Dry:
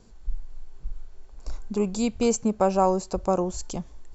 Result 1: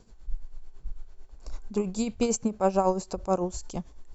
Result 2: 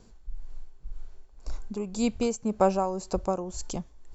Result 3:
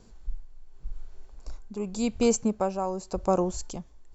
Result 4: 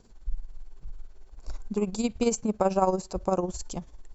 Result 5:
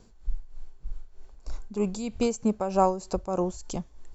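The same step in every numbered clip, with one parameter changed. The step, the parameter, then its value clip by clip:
tremolo, rate: 9, 1.9, 0.88, 18, 3.2 Hz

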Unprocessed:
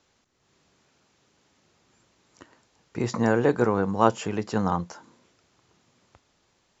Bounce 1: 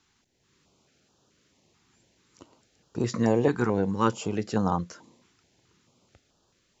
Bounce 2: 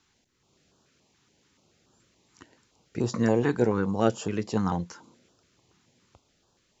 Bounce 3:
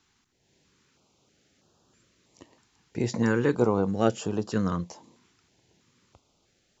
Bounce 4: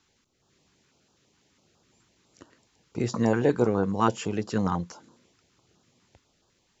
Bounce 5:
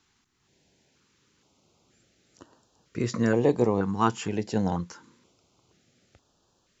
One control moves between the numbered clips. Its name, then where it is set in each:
stepped notch, rate: 4.6, 7, 3.1, 12, 2.1 Hz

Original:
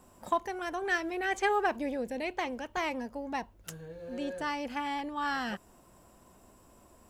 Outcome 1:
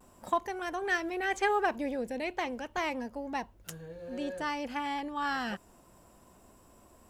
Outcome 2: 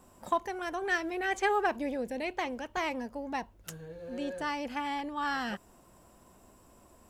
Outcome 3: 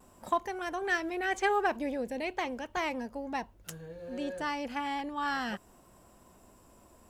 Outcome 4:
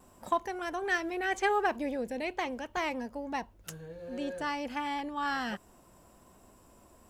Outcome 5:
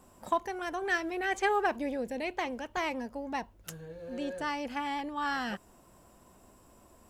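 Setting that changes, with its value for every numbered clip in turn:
vibrato, rate: 0.31, 13, 0.56, 1.3, 8.1 Hz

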